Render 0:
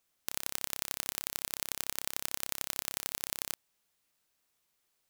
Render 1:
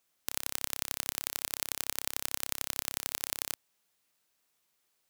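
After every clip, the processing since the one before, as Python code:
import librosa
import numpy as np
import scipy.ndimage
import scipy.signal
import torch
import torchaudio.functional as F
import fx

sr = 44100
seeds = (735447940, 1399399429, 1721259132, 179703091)

y = fx.low_shelf(x, sr, hz=82.0, db=-8.0)
y = y * 10.0 ** (1.5 / 20.0)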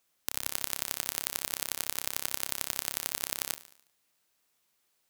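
y = fx.echo_feedback(x, sr, ms=72, feedback_pct=51, wet_db=-16.0)
y = y * 10.0 ** (1.5 / 20.0)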